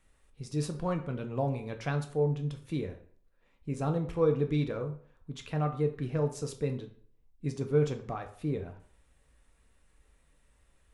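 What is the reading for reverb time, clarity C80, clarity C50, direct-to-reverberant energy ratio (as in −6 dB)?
0.50 s, 15.0 dB, 11.5 dB, 4.5 dB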